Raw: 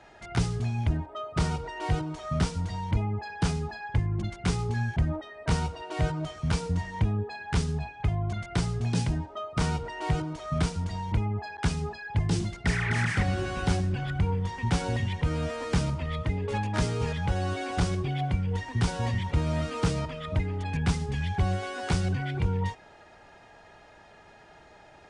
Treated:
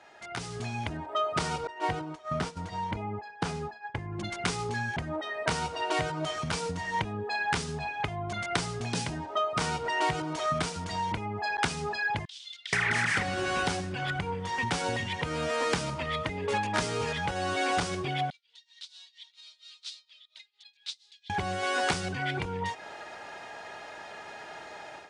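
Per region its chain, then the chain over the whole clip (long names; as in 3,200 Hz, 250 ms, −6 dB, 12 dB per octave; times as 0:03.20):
0:01.67–0:04.13: downward expander −30 dBFS + high-shelf EQ 2,600 Hz −8.5 dB
0:12.25–0:12.73: downward compressor 4 to 1, threshold −29 dBFS + four-pole ladder band-pass 3,700 Hz, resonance 70%
0:18.30–0:21.30: noise gate −26 dBFS, range −7 dB + amplitude tremolo 4.3 Hz, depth 91% + four-pole ladder band-pass 4,200 Hz, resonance 70%
whole clip: downward compressor 3 to 1, threshold −34 dBFS; high-pass filter 540 Hz 6 dB per octave; automatic gain control gain up to 11.5 dB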